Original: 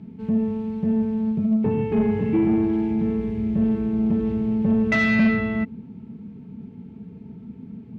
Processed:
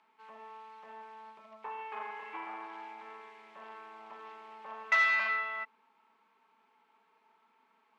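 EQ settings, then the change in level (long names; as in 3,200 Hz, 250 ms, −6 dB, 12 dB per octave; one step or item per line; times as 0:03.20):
four-pole ladder high-pass 920 Hz, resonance 55%
+4.0 dB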